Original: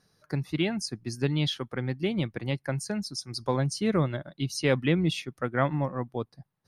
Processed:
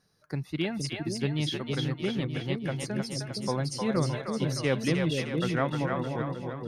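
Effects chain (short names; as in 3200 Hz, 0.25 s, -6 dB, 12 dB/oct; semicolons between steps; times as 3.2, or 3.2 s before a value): split-band echo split 510 Hz, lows 0.466 s, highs 0.308 s, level -3 dB; gain -3 dB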